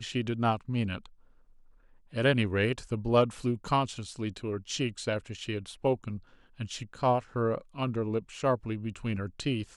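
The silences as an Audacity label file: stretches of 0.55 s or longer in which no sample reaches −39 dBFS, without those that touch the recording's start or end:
1.060000	2.140000	silence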